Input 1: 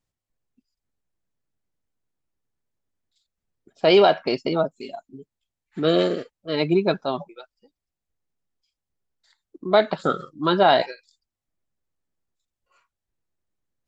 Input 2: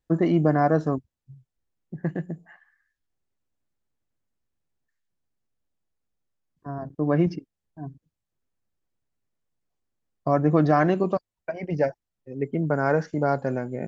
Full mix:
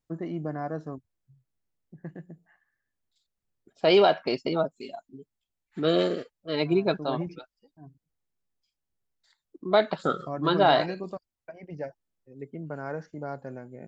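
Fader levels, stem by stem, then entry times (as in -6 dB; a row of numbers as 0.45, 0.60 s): -4.0, -12.5 dB; 0.00, 0.00 s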